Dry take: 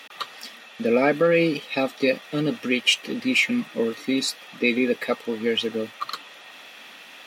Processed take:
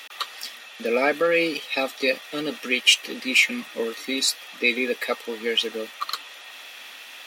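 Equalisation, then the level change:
high-pass filter 260 Hz 12 dB per octave
spectral tilt +2 dB per octave
0.0 dB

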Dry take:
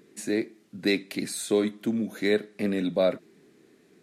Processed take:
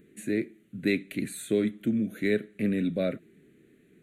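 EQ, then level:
low-shelf EQ 130 Hz +12 dB
phaser with its sweep stopped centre 2,200 Hz, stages 4
−1.5 dB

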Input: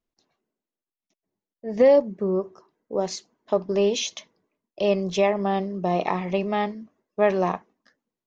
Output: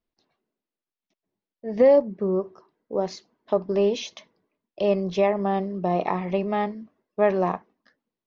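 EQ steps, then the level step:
low-pass filter 5,000 Hz 24 dB per octave
dynamic equaliser 3,300 Hz, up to −6 dB, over −43 dBFS, Q 1.1
0.0 dB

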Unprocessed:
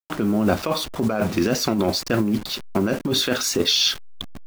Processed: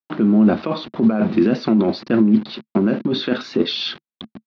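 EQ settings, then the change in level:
high-frequency loss of the air 250 metres
loudspeaker in its box 150–5,100 Hz, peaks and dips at 150 Hz +4 dB, 220 Hz +10 dB, 340 Hz +6 dB, 4,000 Hz +4 dB
0.0 dB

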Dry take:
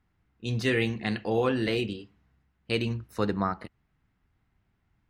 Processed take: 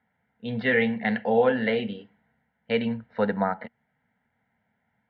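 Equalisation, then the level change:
high-frequency loss of the air 140 metres
loudspeaker in its box 230–3,000 Hz, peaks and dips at 230 Hz +9 dB, 470 Hz +5 dB, 960 Hz +4 dB, 2,400 Hz +10 dB
phaser with its sweep stopped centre 1,700 Hz, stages 8
+7.0 dB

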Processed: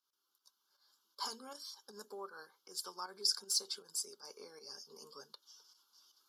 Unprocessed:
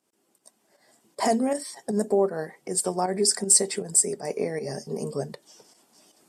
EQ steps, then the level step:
high-pass filter 1,100 Hz 12 dB per octave
Butterworth band-reject 1,900 Hz, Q 2.1
phaser with its sweep stopped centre 2,500 Hz, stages 6
−3.5 dB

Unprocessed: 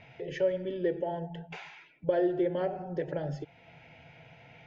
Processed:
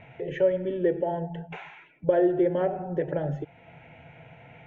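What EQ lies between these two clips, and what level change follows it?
moving average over 9 samples
+5.5 dB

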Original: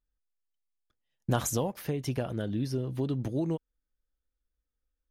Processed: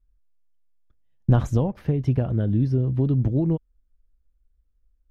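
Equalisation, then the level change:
RIAA equalisation playback
high-shelf EQ 6,000 Hz −7.5 dB
+1.0 dB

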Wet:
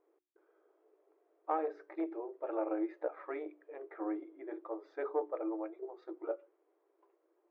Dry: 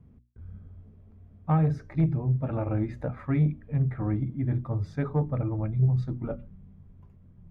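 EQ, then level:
linear-phase brick-wall high-pass 310 Hz
high-frequency loss of the air 190 metres
high-shelf EQ 2,000 Hz −10 dB
0.0 dB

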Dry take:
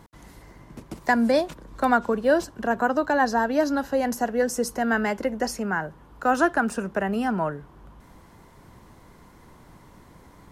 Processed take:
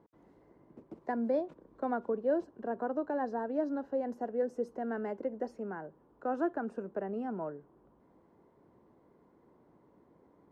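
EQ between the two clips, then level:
resonant band-pass 400 Hz, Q 1.3
−7.0 dB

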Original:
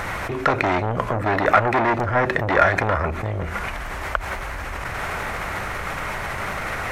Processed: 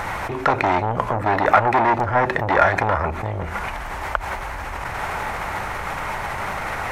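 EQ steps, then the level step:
parametric band 870 Hz +7.5 dB 0.47 octaves
−1.0 dB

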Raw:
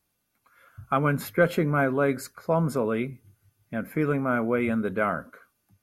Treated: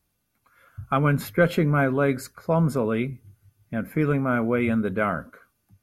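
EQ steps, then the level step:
dynamic equaliser 3,300 Hz, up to +4 dB, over −41 dBFS, Q 0.98
low-shelf EQ 160 Hz +9 dB
0.0 dB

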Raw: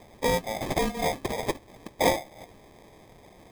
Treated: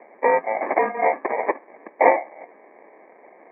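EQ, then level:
dynamic equaliser 1,100 Hz, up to +5 dB, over −41 dBFS, Q 0.98
Bessel high-pass filter 420 Hz, order 8
Chebyshev low-pass with heavy ripple 2,300 Hz, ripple 3 dB
+8.0 dB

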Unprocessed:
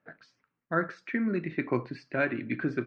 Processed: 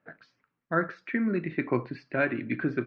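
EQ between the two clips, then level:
low-pass filter 4,100 Hz 12 dB per octave
+1.5 dB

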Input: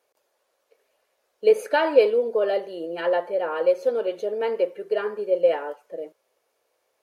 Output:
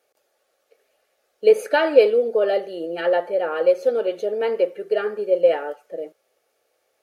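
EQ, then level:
Butterworth band-reject 990 Hz, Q 5.3
+3.0 dB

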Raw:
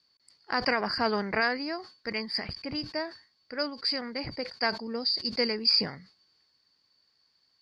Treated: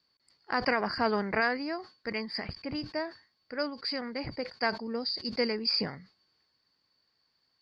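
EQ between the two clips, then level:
high-shelf EQ 4,900 Hz −11.5 dB
0.0 dB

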